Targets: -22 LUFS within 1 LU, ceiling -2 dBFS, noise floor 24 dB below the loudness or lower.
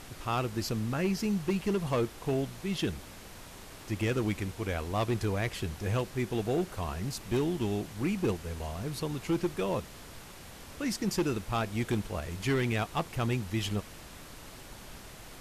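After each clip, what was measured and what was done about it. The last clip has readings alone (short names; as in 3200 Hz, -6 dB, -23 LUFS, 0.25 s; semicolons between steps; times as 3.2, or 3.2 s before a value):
clipped 1.4%; flat tops at -23.0 dBFS; noise floor -48 dBFS; noise floor target -57 dBFS; loudness -32.5 LUFS; peak -23.0 dBFS; loudness target -22.0 LUFS
-> clip repair -23 dBFS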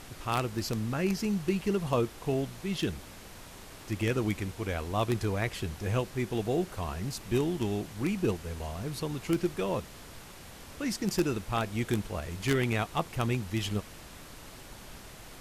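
clipped 0.0%; noise floor -48 dBFS; noise floor target -56 dBFS
-> noise print and reduce 8 dB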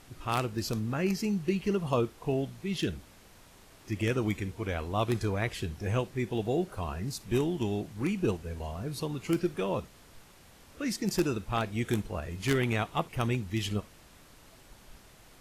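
noise floor -56 dBFS; loudness -32.0 LUFS; peak -14.0 dBFS; loudness target -22.0 LUFS
-> gain +10 dB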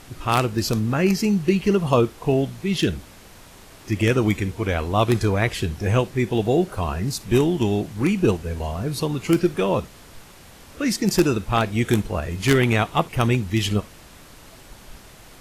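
loudness -22.0 LUFS; peak -4.0 dBFS; noise floor -46 dBFS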